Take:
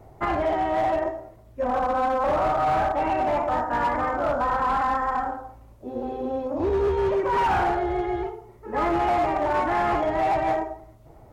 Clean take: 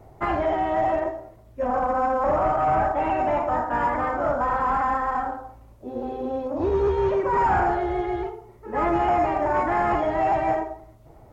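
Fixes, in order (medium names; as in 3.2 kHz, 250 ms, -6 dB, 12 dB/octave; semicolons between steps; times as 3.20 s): clip repair -18.5 dBFS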